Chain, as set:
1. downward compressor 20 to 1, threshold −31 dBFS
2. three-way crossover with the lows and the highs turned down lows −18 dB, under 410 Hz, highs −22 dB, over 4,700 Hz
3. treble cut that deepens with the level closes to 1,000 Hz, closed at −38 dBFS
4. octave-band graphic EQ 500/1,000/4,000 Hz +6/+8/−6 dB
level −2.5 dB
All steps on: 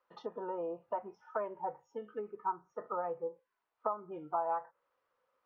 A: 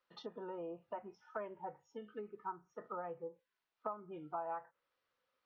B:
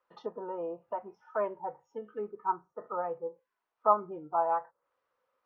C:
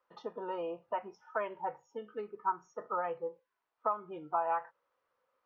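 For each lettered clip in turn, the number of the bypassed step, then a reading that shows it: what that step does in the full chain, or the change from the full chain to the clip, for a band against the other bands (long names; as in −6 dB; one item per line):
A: 4, 1 kHz band −5.0 dB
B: 1, average gain reduction 2.5 dB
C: 3, 2 kHz band +7.5 dB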